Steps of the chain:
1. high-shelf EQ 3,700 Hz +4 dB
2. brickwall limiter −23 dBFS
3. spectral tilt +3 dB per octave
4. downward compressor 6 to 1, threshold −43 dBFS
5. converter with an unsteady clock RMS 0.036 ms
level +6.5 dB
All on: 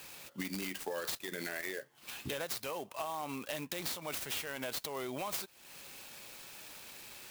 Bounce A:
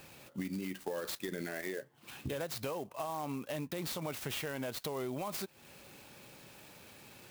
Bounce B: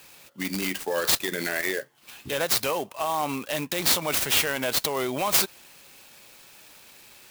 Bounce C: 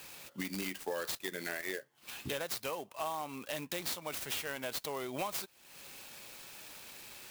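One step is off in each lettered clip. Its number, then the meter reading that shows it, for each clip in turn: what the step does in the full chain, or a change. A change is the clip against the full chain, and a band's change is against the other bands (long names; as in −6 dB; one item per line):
3, 125 Hz band +8.0 dB
4, average gain reduction 8.5 dB
2, average gain reduction 3.5 dB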